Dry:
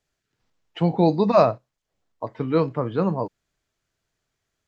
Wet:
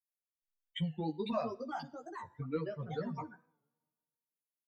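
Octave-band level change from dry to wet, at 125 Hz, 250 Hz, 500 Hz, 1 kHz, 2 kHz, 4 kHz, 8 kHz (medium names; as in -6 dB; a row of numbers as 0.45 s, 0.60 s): -15.0 dB, -16.0 dB, -18.5 dB, -16.0 dB, -10.5 dB, -7.5 dB, no reading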